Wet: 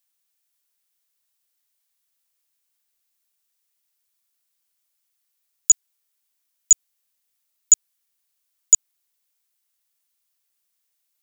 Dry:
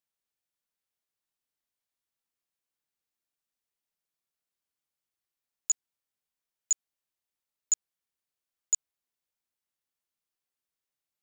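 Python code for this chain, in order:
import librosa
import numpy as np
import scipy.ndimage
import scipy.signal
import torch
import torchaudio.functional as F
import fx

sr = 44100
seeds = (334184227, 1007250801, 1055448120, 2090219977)

y = fx.tilt_eq(x, sr, slope=3.0)
y = F.gain(torch.from_numpy(y), 5.0).numpy()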